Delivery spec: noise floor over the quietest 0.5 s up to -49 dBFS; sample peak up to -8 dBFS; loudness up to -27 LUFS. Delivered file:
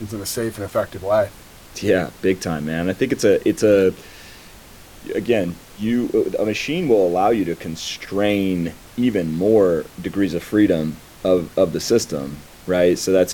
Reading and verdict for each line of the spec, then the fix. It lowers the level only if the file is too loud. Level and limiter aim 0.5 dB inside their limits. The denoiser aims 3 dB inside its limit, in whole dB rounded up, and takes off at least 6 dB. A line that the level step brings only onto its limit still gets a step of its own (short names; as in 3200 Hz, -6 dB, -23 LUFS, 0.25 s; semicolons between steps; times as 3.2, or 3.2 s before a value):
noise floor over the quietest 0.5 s -42 dBFS: fail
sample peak -4.5 dBFS: fail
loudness -20.0 LUFS: fail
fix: gain -7.5 dB